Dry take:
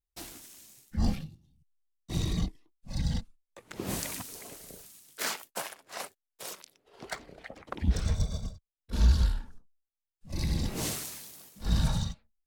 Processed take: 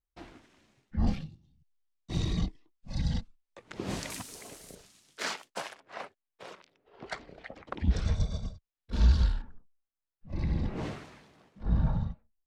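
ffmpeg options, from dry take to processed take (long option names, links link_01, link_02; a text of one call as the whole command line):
ffmpeg -i in.wav -af "asetnsamples=nb_out_samples=441:pad=0,asendcmd='1.07 lowpass f 5400;4.1 lowpass f 10000;4.75 lowpass f 5600;5.8 lowpass f 2500;7.06 lowpass f 4800;9.42 lowpass f 1900;11.63 lowpass f 1100',lowpass=2100" out.wav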